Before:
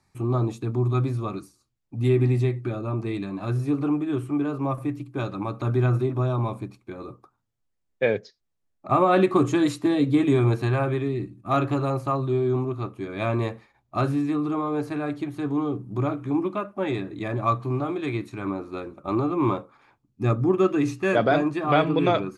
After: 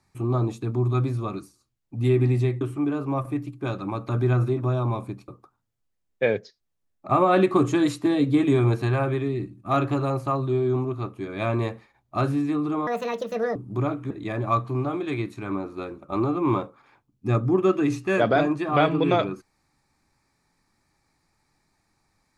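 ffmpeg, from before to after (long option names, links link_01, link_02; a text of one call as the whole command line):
ffmpeg -i in.wav -filter_complex "[0:a]asplit=6[link_01][link_02][link_03][link_04][link_05][link_06];[link_01]atrim=end=2.612[link_07];[link_02]atrim=start=4.138:end=6.812[link_08];[link_03]atrim=start=7.078:end=14.674[link_09];[link_04]atrim=start=14.67:end=15.76,asetpts=PTS-STARTPTS,asetrate=70119,aresample=44100,atrim=end_sample=30232,asetpts=PTS-STARTPTS[link_10];[link_05]atrim=start=15.756:end=16.312[link_11];[link_06]atrim=start=17.058[link_12];[link_07][link_08]acrossfade=duration=0.004:curve1=hsin:curve2=hsin[link_13];[link_13][link_09]acrossfade=duration=0.004:curve1=hsin:curve2=hsin[link_14];[link_14][link_10]acrossfade=duration=0.004:curve1=hsin:curve2=hsin[link_15];[link_15][link_11]acrossfade=duration=0.004:curve1=hsin:curve2=hsin[link_16];[link_16][link_12]acrossfade=duration=0.004:curve1=hsin:curve2=hsin" out.wav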